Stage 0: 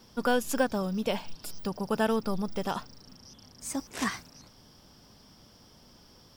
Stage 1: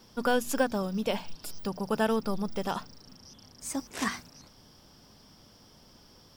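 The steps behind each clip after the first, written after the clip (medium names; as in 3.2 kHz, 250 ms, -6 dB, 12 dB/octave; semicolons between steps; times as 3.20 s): hum notches 60/120/180/240 Hz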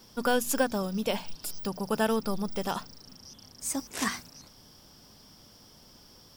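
treble shelf 5.8 kHz +7.5 dB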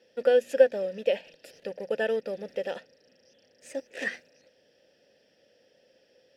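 in parallel at -5 dB: small samples zeroed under -35 dBFS; on the sum: vowel filter e; trim +7.5 dB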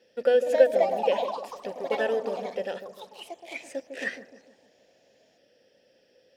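feedback echo behind a low-pass 152 ms, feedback 45%, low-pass 700 Hz, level -7 dB; ever faster or slower copies 327 ms, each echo +4 st, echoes 3, each echo -6 dB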